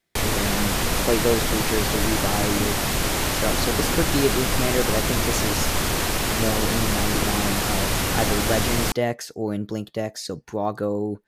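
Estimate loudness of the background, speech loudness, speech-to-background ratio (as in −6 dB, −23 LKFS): −23.0 LKFS, −27.5 LKFS, −4.5 dB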